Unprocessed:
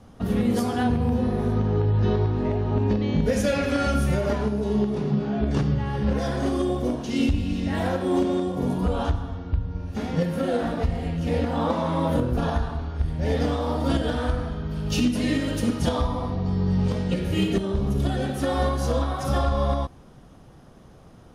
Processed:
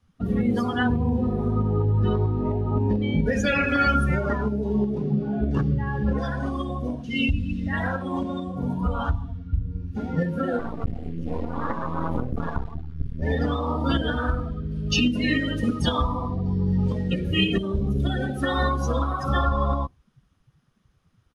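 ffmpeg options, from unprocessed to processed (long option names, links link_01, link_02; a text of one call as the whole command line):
ffmpeg -i in.wav -filter_complex "[0:a]asettb=1/sr,asplit=3[link_01][link_02][link_03];[link_01]atrim=end=6.254[link_04];[link_02]atrim=start=6.25:end=9.61,asetpts=PTS-STARTPTS,afade=type=in:duration=0.004:curve=qsin,afade=type=out:start_time=3.356:duration=0.004:curve=qsin,equalizer=frequency=360:width=2.6:gain=-11[link_05];[link_03]atrim=start=9.606[link_06];[link_04][link_05]acrossfade=duration=0.004:curve1=hsin:curve2=qsin[link_07];[link_07][link_06]acrossfade=duration=0.004:curve1=qsin:curve2=hsin,asettb=1/sr,asplit=3[link_08][link_09][link_10];[link_08]atrim=end=10.594[link_11];[link_09]atrim=start=10.59:end=13.22,asetpts=PTS-STARTPTS,afade=type=in:duration=0.004:curve=qsin,afade=type=out:start_time=2.626:duration=0.004:curve=qsin,aeval=exprs='max(val(0),0)':channel_layout=same[link_12];[link_10]atrim=start=13.216[link_13];[link_11][link_12]acrossfade=duration=0.004:curve1=hsin:curve2=qsin[link_14];[link_14][link_13]acrossfade=duration=0.004:curve1=qsin:curve2=hsin,asettb=1/sr,asplit=3[link_15][link_16][link_17];[link_15]atrim=end=15.634[link_18];[link_16]atrim=start=15.63:end=19.25,asetpts=PTS-STARTPTS,afade=type=in:duration=0.004:curve=qsin,afade=type=out:start_time=3.616:duration=0.004:curve=qsin,highshelf=frequency=6700:gain=5.5[link_19];[link_17]atrim=start=19.246[link_20];[link_18][link_19]acrossfade=duration=0.004:curve1=hsin:curve2=qsin[link_21];[link_21][link_20]acrossfade=duration=0.004:curve1=qsin:curve2=hsin,highshelf=frequency=4300:gain=-5,afftdn=noise_reduction=23:noise_floor=-31,firequalizer=gain_entry='entry(280,0);entry(660,-4);entry(1200,8);entry(2300,12)':delay=0.05:min_phase=1" out.wav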